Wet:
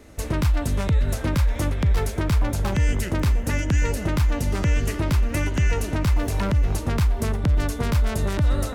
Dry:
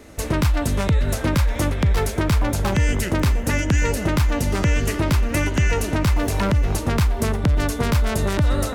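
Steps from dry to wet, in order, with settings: low shelf 110 Hz +5.5 dB; gain -5 dB

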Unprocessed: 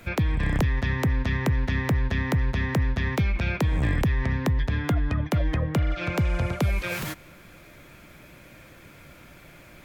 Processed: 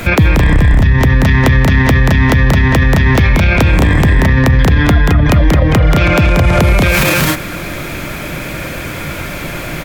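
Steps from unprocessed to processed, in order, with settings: 0.54–0.98 low shelf 160 Hz +9.5 dB; compressor, threshold -23 dBFS, peak gain reduction 11 dB; loudspeakers at several distances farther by 63 m -5 dB, 74 m -6 dB; maximiser +25.5 dB; gain -1 dB

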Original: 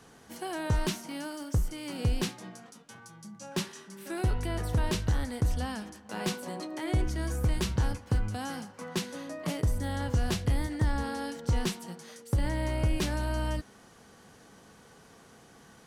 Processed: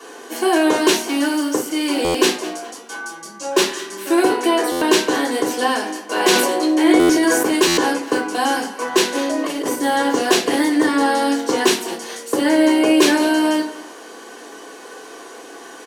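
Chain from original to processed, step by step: Chebyshev high-pass 270 Hz, order 4; reverb RT60 0.30 s, pre-delay 3 ms, DRR -4.5 dB; 9.15–9.76 negative-ratio compressor -28 dBFS, ratio -1; feedback echo 0.205 s, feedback 28%, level -17.5 dB; stuck buffer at 2.04/4.71/6.99/7.67, samples 512; 6.2–7.59 sustainer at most 34 dB/s; gain +6.5 dB

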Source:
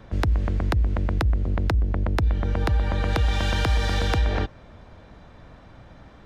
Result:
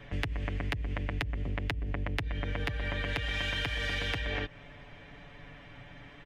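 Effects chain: band shelf 2400 Hz +11 dB 1.1 oct; comb 7 ms, depth 77%; compressor, threshold -24 dBFS, peak gain reduction 9.5 dB; gain -5.5 dB

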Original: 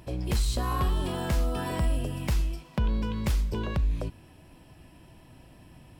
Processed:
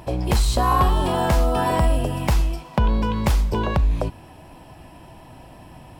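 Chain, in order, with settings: bell 820 Hz +9 dB 1.1 oct; gain +7 dB

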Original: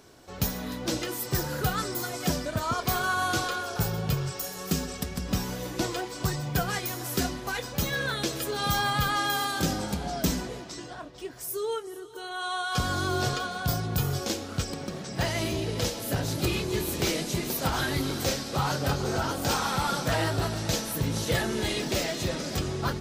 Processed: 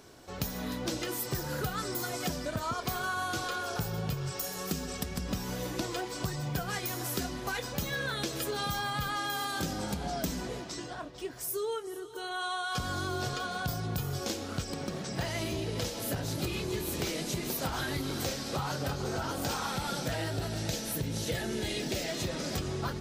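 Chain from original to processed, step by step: 19.72–22.1 bell 1100 Hz -8.5 dB 0.57 oct; compressor, threshold -30 dBFS, peak gain reduction 9.5 dB

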